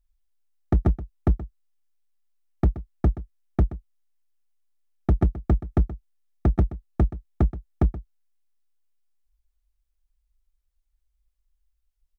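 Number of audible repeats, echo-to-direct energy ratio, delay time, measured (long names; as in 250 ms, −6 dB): 1, −15.5 dB, 126 ms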